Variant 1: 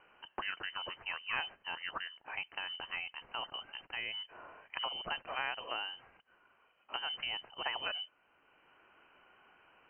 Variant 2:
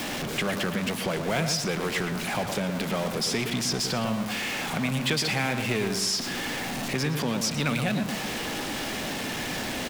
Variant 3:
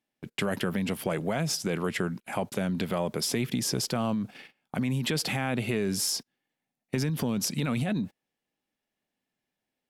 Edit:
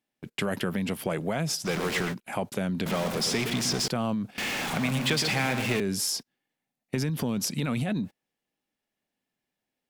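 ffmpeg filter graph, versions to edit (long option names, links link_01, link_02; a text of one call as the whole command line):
ffmpeg -i take0.wav -i take1.wav -i take2.wav -filter_complex "[1:a]asplit=3[link_01][link_02][link_03];[2:a]asplit=4[link_04][link_05][link_06][link_07];[link_04]atrim=end=1.68[link_08];[link_01]atrim=start=1.64:end=2.15[link_09];[link_05]atrim=start=2.11:end=2.862[link_10];[link_02]atrim=start=2.858:end=3.882[link_11];[link_06]atrim=start=3.878:end=4.382[link_12];[link_03]atrim=start=4.378:end=5.802[link_13];[link_07]atrim=start=5.798[link_14];[link_08][link_09]acrossfade=duration=0.04:curve1=tri:curve2=tri[link_15];[link_15][link_10]acrossfade=duration=0.04:curve1=tri:curve2=tri[link_16];[link_16][link_11]acrossfade=duration=0.004:curve1=hsin:curve2=hsin[link_17];[link_17][link_12]acrossfade=duration=0.004:curve1=hsin:curve2=hsin[link_18];[link_18][link_13]acrossfade=duration=0.004:curve1=hsin:curve2=hsin[link_19];[link_19][link_14]acrossfade=duration=0.004:curve1=hsin:curve2=hsin" out.wav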